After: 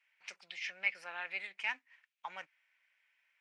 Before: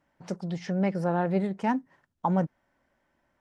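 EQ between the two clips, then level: resonant high-pass 2.4 kHz, resonance Q 5.1; treble shelf 5.3 kHz -9.5 dB; 0.0 dB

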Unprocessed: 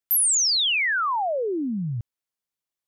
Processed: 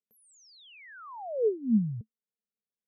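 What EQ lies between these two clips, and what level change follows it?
two resonant band-passes 310 Hz, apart 1 oct; bass shelf 330 Hz +10.5 dB; 0.0 dB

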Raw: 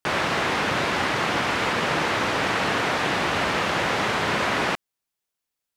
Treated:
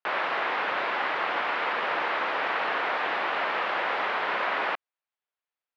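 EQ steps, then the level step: high-pass 620 Hz 12 dB/octave; brick-wall FIR low-pass 12 kHz; distance through air 370 m; 0.0 dB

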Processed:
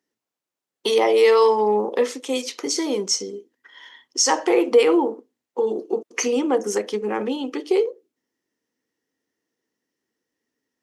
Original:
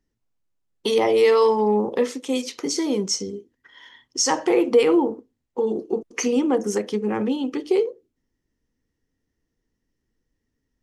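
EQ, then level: high-pass 340 Hz 12 dB/octave; +2.5 dB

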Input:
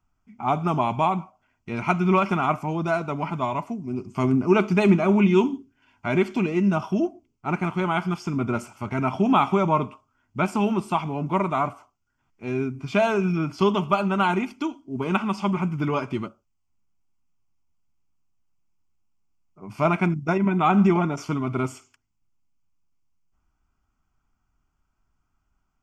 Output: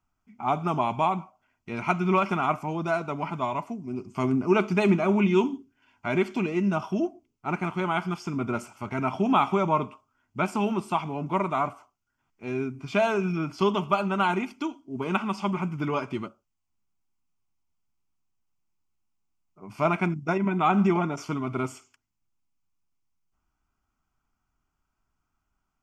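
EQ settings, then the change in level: bass shelf 170 Hz -5.5 dB; -2.0 dB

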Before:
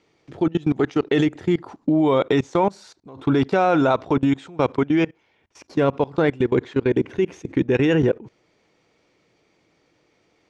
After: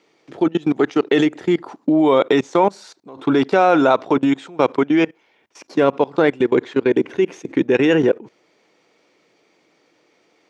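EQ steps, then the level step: high-pass 240 Hz 12 dB/octave; +4.5 dB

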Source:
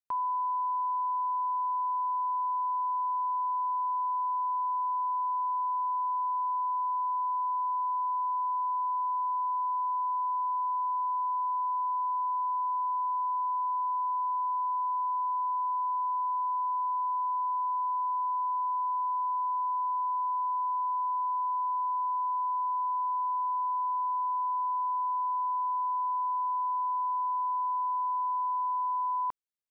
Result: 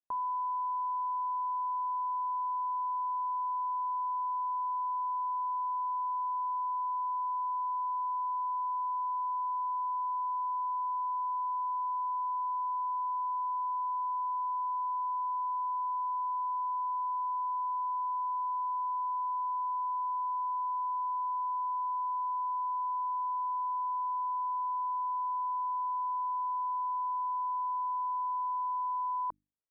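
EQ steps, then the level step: low-pass 1 kHz 12 dB/octave; hum notches 50/100/150/200/250/300 Hz; 0.0 dB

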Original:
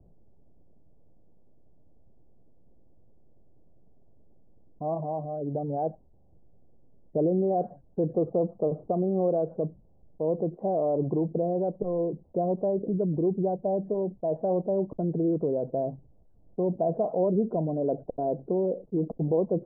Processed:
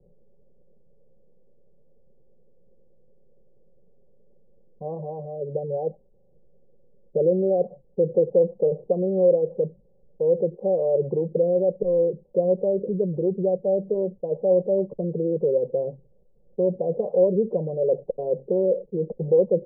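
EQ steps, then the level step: resonant low-pass 570 Hz, resonance Q 6.9; distance through air 450 m; static phaser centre 430 Hz, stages 8; 0.0 dB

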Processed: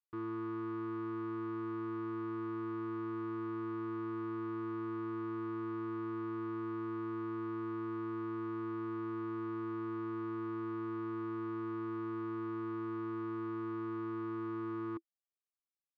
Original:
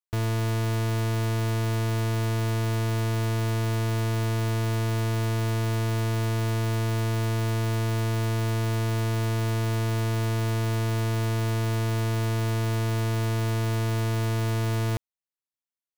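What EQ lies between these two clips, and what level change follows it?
two resonant band-passes 620 Hz, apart 1.8 oct; distance through air 170 m; -1.0 dB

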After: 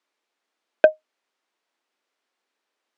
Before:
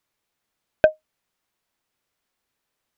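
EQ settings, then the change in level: high-pass 270 Hz 24 dB/octave; distance through air 69 m; +2.0 dB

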